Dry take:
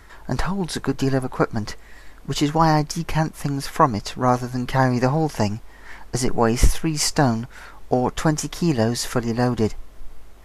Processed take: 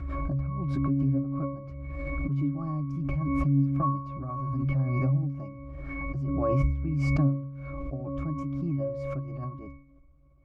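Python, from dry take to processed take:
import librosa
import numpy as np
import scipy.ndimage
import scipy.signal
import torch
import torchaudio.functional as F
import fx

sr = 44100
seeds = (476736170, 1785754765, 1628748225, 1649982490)

y = fx.low_shelf(x, sr, hz=460.0, db=5.0)
y = fx.octave_resonator(y, sr, note='C#', decay_s=0.63)
y = fx.pre_swell(y, sr, db_per_s=21.0)
y = F.gain(torch.from_numpy(y), 2.0).numpy()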